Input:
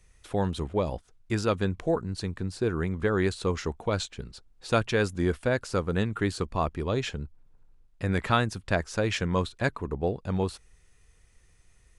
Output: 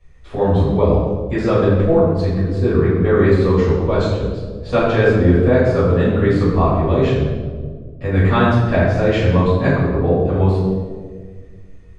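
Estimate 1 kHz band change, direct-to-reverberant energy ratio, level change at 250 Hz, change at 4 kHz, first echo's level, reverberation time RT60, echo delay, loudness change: +10.0 dB, −10.5 dB, +13.5 dB, +3.5 dB, no echo audible, 1.7 s, no echo audible, +13.0 dB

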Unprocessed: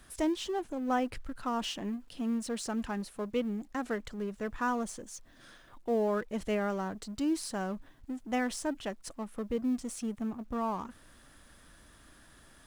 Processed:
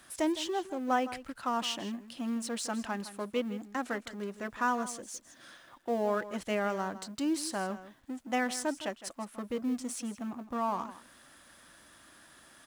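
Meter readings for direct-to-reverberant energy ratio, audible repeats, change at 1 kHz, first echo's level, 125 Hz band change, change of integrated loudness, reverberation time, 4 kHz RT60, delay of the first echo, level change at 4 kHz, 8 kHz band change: no reverb audible, 1, +2.5 dB, −14.5 dB, can't be measured, 0.0 dB, no reverb audible, no reverb audible, 161 ms, +3.0 dB, +3.0 dB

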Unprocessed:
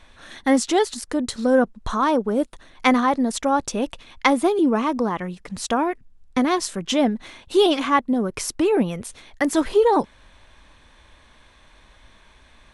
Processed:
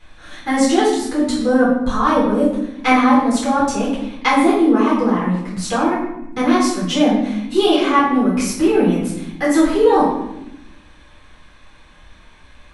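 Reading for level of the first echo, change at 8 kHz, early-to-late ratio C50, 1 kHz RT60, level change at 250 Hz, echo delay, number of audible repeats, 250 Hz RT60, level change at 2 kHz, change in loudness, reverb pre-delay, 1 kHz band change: no echo audible, +2.5 dB, 2.0 dB, 0.80 s, +6.5 dB, no echo audible, no echo audible, 1.5 s, +4.5 dB, +5.0 dB, 8 ms, +5.0 dB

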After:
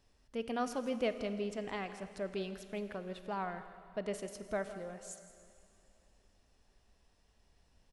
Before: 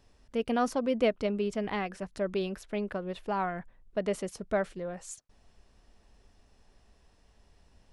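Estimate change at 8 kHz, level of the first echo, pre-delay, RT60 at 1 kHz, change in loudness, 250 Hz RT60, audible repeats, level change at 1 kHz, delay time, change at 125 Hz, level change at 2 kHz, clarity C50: −4.5 dB, −15.5 dB, 28 ms, 2.6 s, −7.5 dB, 2.6 s, 1, −7.0 dB, 165 ms, −7.5 dB, −6.0 dB, 10.0 dB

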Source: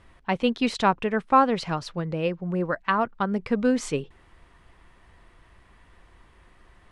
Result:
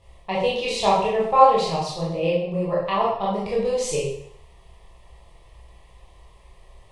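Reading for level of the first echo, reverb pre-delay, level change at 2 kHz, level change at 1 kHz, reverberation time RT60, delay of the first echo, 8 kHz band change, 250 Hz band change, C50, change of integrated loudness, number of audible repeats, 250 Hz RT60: no echo audible, 17 ms, −2.5 dB, +4.5 dB, 0.70 s, no echo audible, +7.5 dB, −4.5 dB, 1.0 dB, +3.0 dB, no echo audible, 0.60 s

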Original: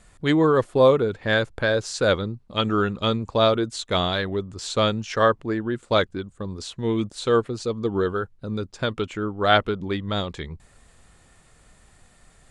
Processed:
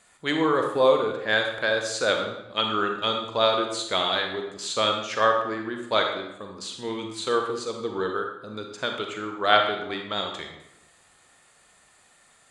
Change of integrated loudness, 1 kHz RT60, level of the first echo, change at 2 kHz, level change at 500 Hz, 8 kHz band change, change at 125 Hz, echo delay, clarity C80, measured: −2.0 dB, 0.85 s, no echo audible, +0.5 dB, −3.5 dB, +1.0 dB, −14.0 dB, no echo audible, 7.0 dB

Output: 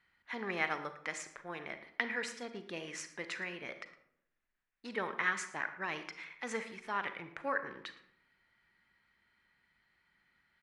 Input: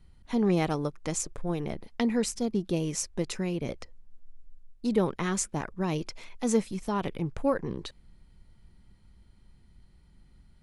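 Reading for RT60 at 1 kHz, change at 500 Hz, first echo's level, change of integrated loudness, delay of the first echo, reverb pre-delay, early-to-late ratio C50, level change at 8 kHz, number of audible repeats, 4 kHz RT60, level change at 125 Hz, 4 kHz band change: 0.65 s, −12.0 dB, −18.0 dB, −8.5 dB, 112 ms, 35 ms, 10.0 dB, −13.5 dB, 1, 0.40 s, −21.5 dB, −5.5 dB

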